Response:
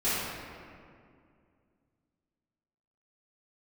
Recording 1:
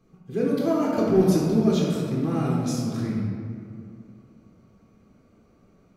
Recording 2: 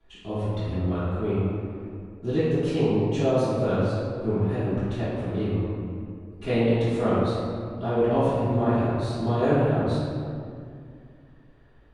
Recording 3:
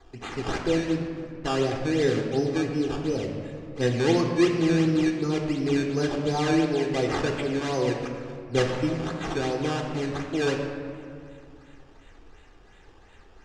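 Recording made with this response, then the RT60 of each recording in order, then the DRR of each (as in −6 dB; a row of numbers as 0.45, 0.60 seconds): 2; 2.3, 2.3, 2.3 seconds; −5.0, −14.0, 2.5 decibels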